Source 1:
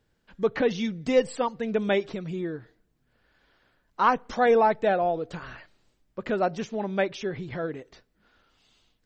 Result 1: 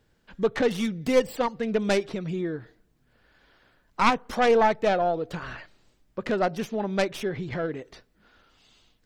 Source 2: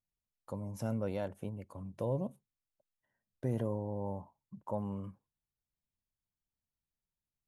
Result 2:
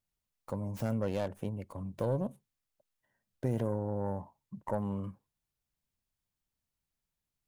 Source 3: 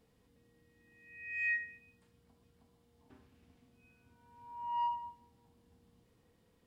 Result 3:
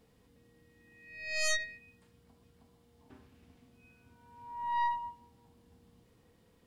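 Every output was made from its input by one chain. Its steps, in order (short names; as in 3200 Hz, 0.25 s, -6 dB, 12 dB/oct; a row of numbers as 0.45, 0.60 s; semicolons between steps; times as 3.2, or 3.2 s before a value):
tracing distortion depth 0.19 ms; in parallel at -1 dB: compressor, threshold -35 dBFS; on the sum: gain -1 dB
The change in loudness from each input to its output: +0.5, +3.0, +3.0 LU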